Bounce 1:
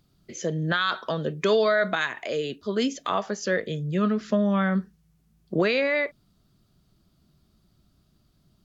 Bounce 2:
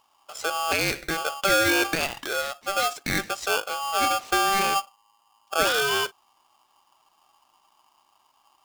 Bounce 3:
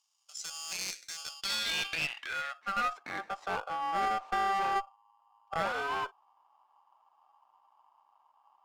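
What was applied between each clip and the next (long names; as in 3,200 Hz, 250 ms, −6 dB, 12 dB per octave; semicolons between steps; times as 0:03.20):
ring modulator with a square carrier 980 Hz
band-pass filter sweep 6,200 Hz → 900 Hz, 0:01.14–0:03.19; asymmetric clip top −32 dBFS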